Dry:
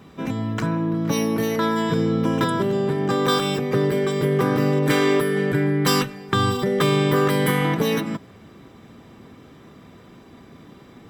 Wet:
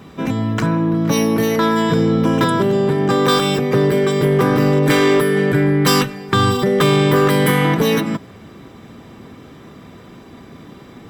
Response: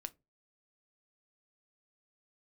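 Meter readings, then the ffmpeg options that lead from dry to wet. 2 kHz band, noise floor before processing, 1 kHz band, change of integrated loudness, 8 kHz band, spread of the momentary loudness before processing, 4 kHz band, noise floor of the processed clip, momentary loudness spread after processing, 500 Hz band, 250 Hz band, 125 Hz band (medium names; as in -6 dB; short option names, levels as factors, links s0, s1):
+5.5 dB, -47 dBFS, +5.5 dB, +5.5 dB, +5.5 dB, 5 LU, +5.5 dB, -41 dBFS, 5 LU, +5.5 dB, +5.5 dB, +5.5 dB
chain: -af "asoftclip=type=tanh:threshold=0.266,volume=2.11"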